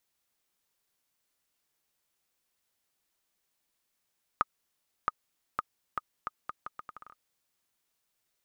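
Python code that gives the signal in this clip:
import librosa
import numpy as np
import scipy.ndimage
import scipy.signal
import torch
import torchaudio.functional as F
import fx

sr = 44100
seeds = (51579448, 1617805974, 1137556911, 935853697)

y = fx.bouncing_ball(sr, first_gap_s=0.67, ratio=0.76, hz=1240.0, decay_ms=28.0, level_db=-11.5)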